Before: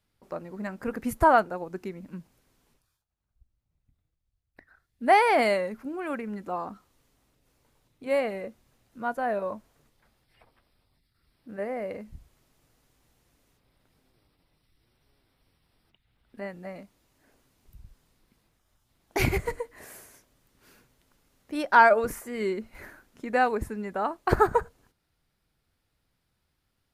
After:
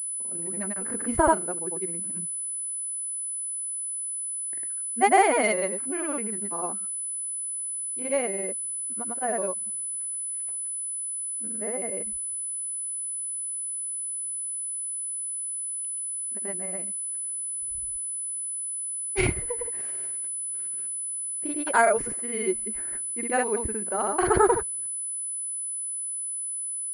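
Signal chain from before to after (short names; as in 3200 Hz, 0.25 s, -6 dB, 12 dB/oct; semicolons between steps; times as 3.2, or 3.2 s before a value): small resonant body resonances 370/2100/3000 Hz, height 7 dB; grains, pitch spread up and down by 0 st; pulse-width modulation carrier 10000 Hz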